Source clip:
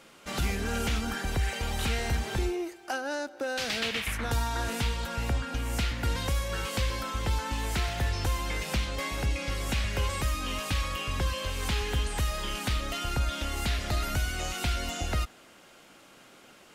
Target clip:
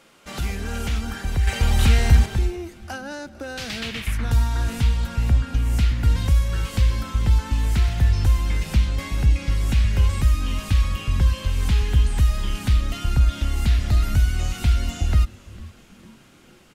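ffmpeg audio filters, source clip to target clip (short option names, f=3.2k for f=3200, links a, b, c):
-filter_complex "[0:a]asplit=5[a][b][c][d][e];[b]adelay=451,afreqshift=-140,volume=-21dB[f];[c]adelay=902,afreqshift=-280,volume=-26dB[g];[d]adelay=1353,afreqshift=-420,volume=-31.1dB[h];[e]adelay=1804,afreqshift=-560,volume=-36.1dB[i];[a][f][g][h][i]amix=inputs=5:normalize=0,asettb=1/sr,asplit=3[j][k][l];[j]atrim=end=1.474[m];[k]atrim=start=1.47:end=2.26,asetpts=PTS-STARTPTS,afade=t=in:d=0.004:c=qsin,afade=t=out:st=0.786:d=0.004:c=qsin,acontrast=69[n];[l]atrim=start=2.256[o];[m][n]acrossfade=d=0.004:c1=hsin:c2=qsin[p];[p][o]acrossfade=d=0.004:c1=qsin:c2=hsin,asubboost=boost=4:cutoff=230"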